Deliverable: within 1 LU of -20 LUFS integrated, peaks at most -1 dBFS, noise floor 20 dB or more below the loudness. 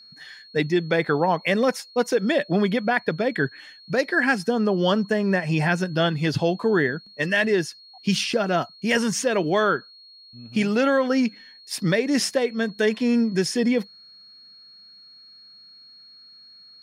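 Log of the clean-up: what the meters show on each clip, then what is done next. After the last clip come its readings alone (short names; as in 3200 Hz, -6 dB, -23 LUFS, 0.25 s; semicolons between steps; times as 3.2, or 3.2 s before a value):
steady tone 4300 Hz; tone level -46 dBFS; loudness -23.0 LUFS; peak -7.5 dBFS; loudness target -20.0 LUFS
-> notch 4300 Hz, Q 30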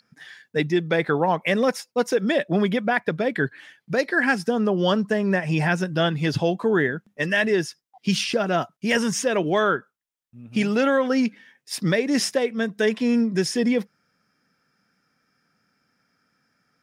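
steady tone none; loudness -23.0 LUFS; peak -7.5 dBFS; loudness target -20.0 LUFS
-> gain +3 dB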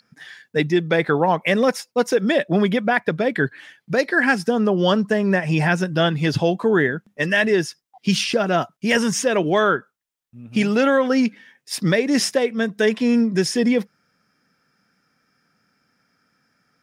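loudness -20.0 LUFS; peak -4.5 dBFS; noise floor -76 dBFS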